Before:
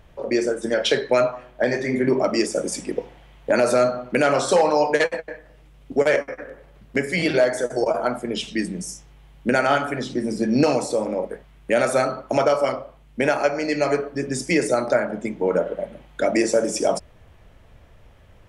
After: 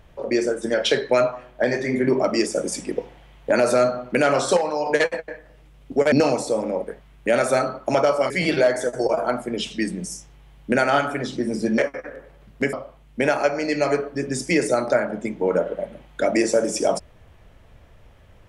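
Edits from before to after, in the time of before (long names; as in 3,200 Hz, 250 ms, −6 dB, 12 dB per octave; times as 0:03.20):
0:04.57–0:04.86: clip gain −6 dB
0:06.12–0:07.07: swap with 0:10.55–0:12.73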